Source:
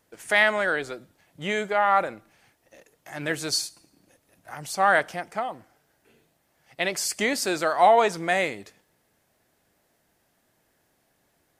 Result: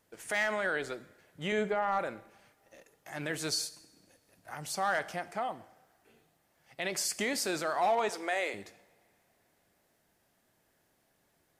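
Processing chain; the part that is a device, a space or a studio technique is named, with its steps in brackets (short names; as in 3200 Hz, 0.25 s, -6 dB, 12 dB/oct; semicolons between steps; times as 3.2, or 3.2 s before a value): 8.09–8.54 HPF 350 Hz 24 dB/oct; clipper into limiter (hard clip -12 dBFS, distortion -19 dB; limiter -18.5 dBFS, peak gain reduction 6.5 dB); 1.52–1.99 tilt -2 dB/oct; two-slope reverb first 0.78 s, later 3.2 s, from -21 dB, DRR 15 dB; gain -4 dB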